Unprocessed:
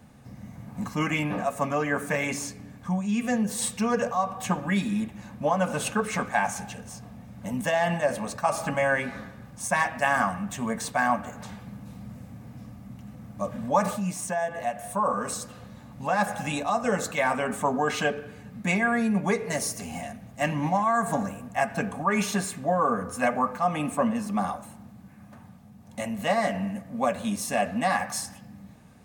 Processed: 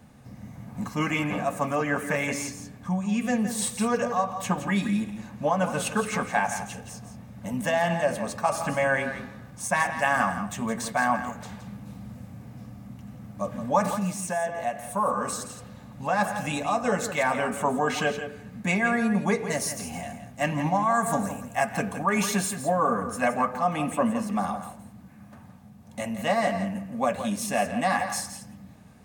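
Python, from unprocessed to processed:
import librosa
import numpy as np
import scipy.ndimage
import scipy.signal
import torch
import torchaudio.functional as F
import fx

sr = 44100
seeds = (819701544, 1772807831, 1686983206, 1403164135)

y = fx.high_shelf(x, sr, hz=fx.line((20.89, 4800.0), (22.94, 8200.0)), db=6.5, at=(20.89, 22.94), fade=0.02)
y = y + 10.0 ** (-10.0 / 20.0) * np.pad(y, (int(168 * sr / 1000.0), 0))[:len(y)]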